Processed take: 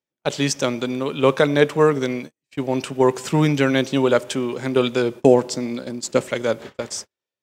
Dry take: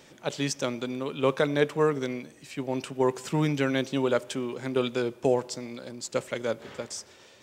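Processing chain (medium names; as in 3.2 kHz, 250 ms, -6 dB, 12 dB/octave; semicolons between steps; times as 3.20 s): gate -40 dBFS, range -45 dB; 5.15–6.30 s: peaking EQ 250 Hz +5.5 dB 1.4 oct; trim +8 dB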